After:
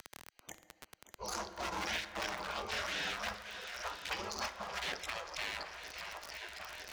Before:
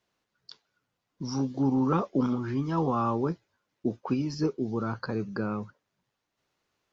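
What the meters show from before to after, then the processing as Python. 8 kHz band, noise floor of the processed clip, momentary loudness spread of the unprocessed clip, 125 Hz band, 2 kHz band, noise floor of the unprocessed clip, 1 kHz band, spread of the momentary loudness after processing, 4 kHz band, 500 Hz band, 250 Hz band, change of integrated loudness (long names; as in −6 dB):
can't be measured, −73 dBFS, 9 LU, −23.5 dB, +6.0 dB, −83 dBFS, −7.0 dB, 16 LU, +8.0 dB, −12.5 dB, −25.0 dB, −10.0 dB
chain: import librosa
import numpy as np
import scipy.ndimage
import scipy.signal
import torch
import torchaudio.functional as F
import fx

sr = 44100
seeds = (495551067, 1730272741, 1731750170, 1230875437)

p1 = fx.wiener(x, sr, points=25)
p2 = scipy.signal.sosfilt(scipy.signal.butter(2, 78.0, 'highpass', fs=sr, output='sos'), p1)
p3 = fx.peak_eq(p2, sr, hz=390.0, db=-11.0, octaves=2.7)
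p4 = p3 + fx.echo_swing(p3, sr, ms=956, ratio=1.5, feedback_pct=63, wet_db=-17.0, dry=0)
p5 = fx.dynamic_eq(p4, sr, hz=200.0, q=3.8, threshold_db=-52.0, ratio=4.0, max_db=-5)
p6 = fx.spec_gate(p5, sr, threshold_db=-25, keep='weak')
p7 = (np.mod(10.0 ** (42.5 / 20.0) * p6 + 1.0, 2.0) - 1.0) / 10.0 ** (42.5 / 20.0)
p8 = p6 + (p7 * 10.0 ** (-11.0 / 20.0))
p9 = fx.rev_fdn(p8, sr, rt60_s=1.5, lf_ratio=0.75, hf_ratio=0.4, size_ms=29.0, drr_db=9.5)
p10 = fx.dmg_crackle(p9, sr, seeds[0], per_s=36.0, level_db=-55.0)
p11 = fx.band_squash(p10, sr, depth_pct=70)
y = p11 * 10.0 ** (14.5 / 20.0)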